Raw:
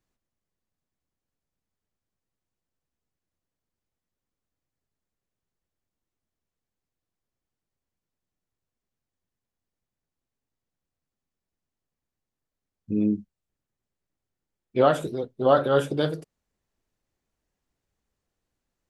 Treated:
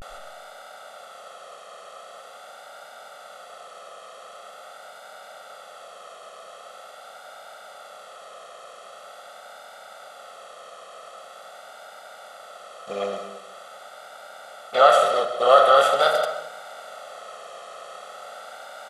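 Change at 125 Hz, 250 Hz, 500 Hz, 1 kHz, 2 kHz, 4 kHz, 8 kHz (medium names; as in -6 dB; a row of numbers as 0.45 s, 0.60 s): under -15 dB, -17.0 dB, +4.5 dB, +10.5 dB, +9.5 dB, +11.5 dB, no reading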